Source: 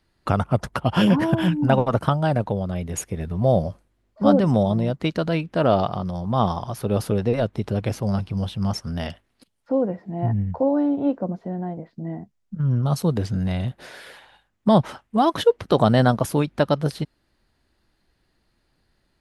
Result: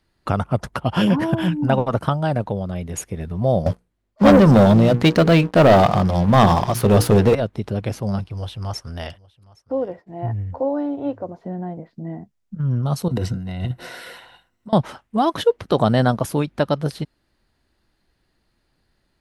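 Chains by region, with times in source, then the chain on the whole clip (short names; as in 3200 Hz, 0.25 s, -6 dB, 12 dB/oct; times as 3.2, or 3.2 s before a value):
3.66–7.35 notches 60/120/180/240/300/360/420/480 Hz + sample leveller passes 3
8.24–11.4 expander -42 dBFS + bell 200 Hz -14.5 dB 0.57 oct + echo 0.815 s -23.5 dB
13.08–14.73 ripple EQ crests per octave 2, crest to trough 9 dB + negative-ratio compressor -24 dBFS, ratio -0.5
whole clip: dry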